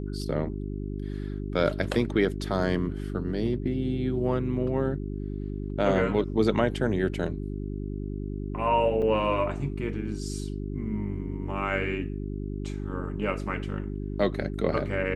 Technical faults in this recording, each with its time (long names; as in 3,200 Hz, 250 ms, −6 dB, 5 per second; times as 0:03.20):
mains hum 50 Hz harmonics 8 −33 dBFS
0:09.02–0:09.03: drop-out 5.5 ms